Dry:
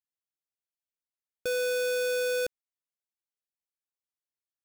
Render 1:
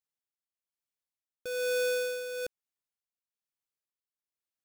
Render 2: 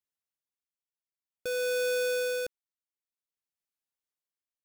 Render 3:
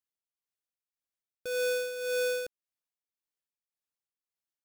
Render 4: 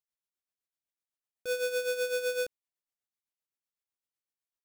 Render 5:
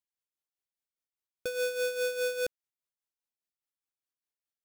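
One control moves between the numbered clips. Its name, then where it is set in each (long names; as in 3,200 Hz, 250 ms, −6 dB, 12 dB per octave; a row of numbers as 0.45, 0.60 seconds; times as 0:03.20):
amplitude tremolo, speed: 1.1, 0.52, 1.8, 7.9, 4.9 Hertz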